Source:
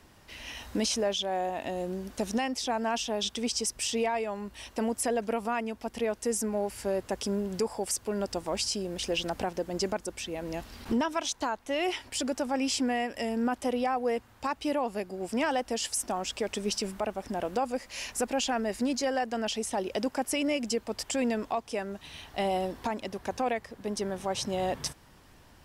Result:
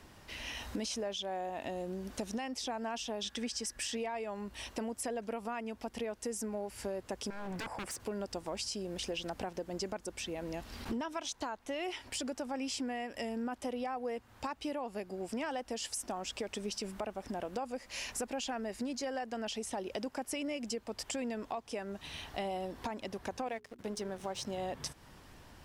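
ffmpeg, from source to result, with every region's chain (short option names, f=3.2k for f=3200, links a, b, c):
-filter_complex "[0:a]asettb=1/sr,asplit=3[a][b][c];[a]atrim=end=3.244[d];[b]atrim=start=3.24:end=3.97,asetpts=PTS-STARTPTS,afade=t=in:d=0.004:c=qsin,afade=t=out:st=0.726:d=0.004:c=qsin,equalizer=f=1.7k:t=o:w=0.35:g=13,aecho=1:1:3.6:0.32,atrim=end_sample=32193[e];[c]atrim=start=3.966[f];[d][e]acrossfade=d=0.004:c1=hsin:c2=qsin[g];[g][f]acrossfade=d=0.004:c1=qsin:c2=hsin,asettb=1/sr,asplit=3[h][i][j];[h]atrim=end=7.304[k];[i]atrim=start=7.3:end=8,asetpts=PTS-STARTPTS,afade=t=in:d=0.004:c=qsin,afade=t=out:st=0.696:d=0.004:c=qsin,highpass=58,highshelf=f=2.7k:t=q:w=1.5:g=-7.5,aeval=exprs='0.0211*(abs(mod(val(0)/0.0211+3,4)-2)-1)':c=same[l];[j]atrim=start=7.996[m];[k][l]acrossfade=d=0.004:c1=hsin:c2=qsin[n];[n][m]acrossfade=d=0.004:c1=qsin:c2=hsin,asettb=1/sr,asplit=3[o][p][q];[o]atrim=end=23.474[r];[p]atrim=start=23.47:end=24.58,asetpts=PTS-STARTPTS,afade=t=in:d=0.004:c=qsin,afade=t=out:st=1.106:d=0.004:c=qsin,aeval=exprs='sgn(val(0))*max(abs(val(0))-0.00355,0)':c=same,bandreject=f=60:t=h:w=6,bandreject=f=120:t=h:w=6,bandreject=f=180:t=h:w=6,bandreject=f=240:t=h:w=6,bandreject=f=300:t=h:w=6,bandreject=f=360:t=h:w=6,bandreject=f=420:t=h:w=6[s];[q]atrim=start=24.576[t];[r][s]acrossfade=d=0.004:c1=hsin:c2=qsin[u];[u][t]acrossfade=d=0.004:c1=qsin:c2=hsin,highshelf=f=9.8k:g=-3.5,acompressor=threshold=-39dB:ratio=3,volume=1dB"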